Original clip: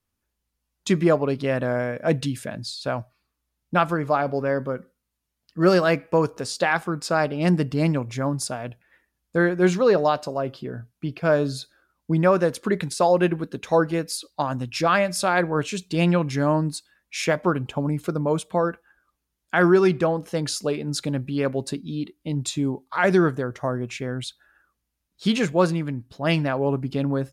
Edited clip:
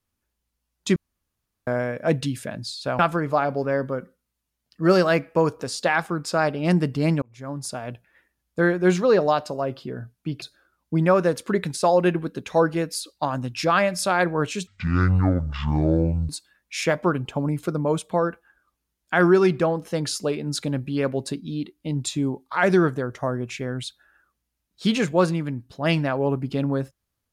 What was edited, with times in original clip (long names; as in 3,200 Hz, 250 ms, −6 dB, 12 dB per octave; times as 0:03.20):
0:00.96–0:01.67: fill with room tone
0:02.99–0:03.76: remove
0:07.99–0:08.68: fade in
0:11.19–0:11.59: remove
0:15.84–0:16.70: play speed 53%